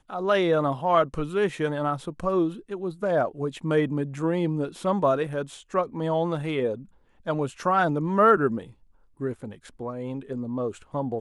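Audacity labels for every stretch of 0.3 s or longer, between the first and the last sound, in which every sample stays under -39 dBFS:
6.830000	7.260000	silence
8.710000	9.200000	silence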